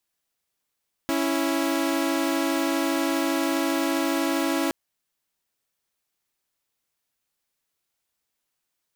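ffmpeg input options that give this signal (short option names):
-f lavfi -i "aevalsrc='0.075*((2*mod(277.18*t,1)-1)+(2*mod(329.63*t,1)-1))':d=3.62:s=44100"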